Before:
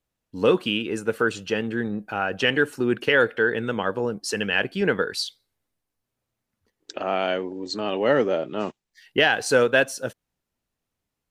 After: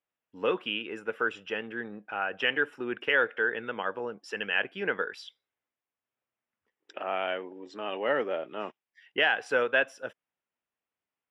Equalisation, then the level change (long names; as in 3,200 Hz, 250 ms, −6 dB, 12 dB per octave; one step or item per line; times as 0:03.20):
Savitzky-Golay smoothing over 25 samples
high-pass filter 810 Hz 6 dB per octave
−3.0 dB